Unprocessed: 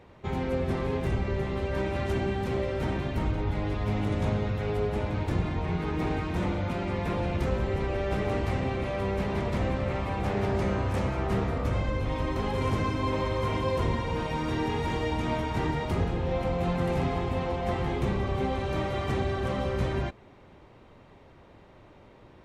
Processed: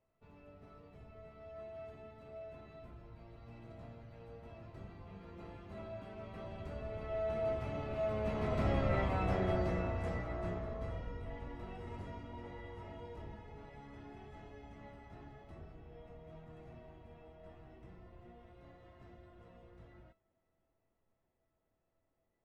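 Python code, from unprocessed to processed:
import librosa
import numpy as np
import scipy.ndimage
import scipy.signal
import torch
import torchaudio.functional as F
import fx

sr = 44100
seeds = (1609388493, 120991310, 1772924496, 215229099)

y = fx.doppler_pass(x, sr, speed_mps=35, closest_m=17.0, pass_at_s=8.98)
y = fx.high_shelf(y, sr, hz=3500.0, db=-10.0)
y = fx.comb_fb(y, sr, f0_hz=660.0, decay_s=0.28, harmonics='all', damping=0.0, mix_pct=90)
y = F.gain(torch.from_numpy(y), 15.0).numpy()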